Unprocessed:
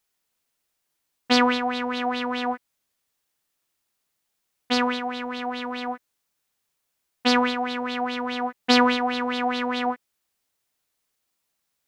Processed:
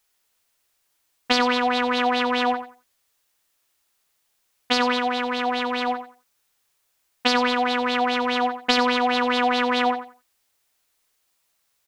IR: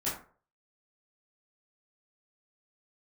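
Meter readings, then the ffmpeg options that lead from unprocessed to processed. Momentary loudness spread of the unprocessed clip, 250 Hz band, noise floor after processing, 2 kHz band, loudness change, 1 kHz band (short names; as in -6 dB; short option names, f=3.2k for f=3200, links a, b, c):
11 LU, -0.5 dB, -71 dBFS, +3.5 dB, +2.5 dB, +3.5 dB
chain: -filter_complex "[0:a]acompressor=threshold=-21dB:ratio=6,equalizer=f=190:w=0.63:g=-7,asplit=2[a][b];[b]aecho=0:1:89|178|267:0.316|0.0664|0.0139[c];[a][c]amix=inputs=2:normalize=0,volume=6.5dB"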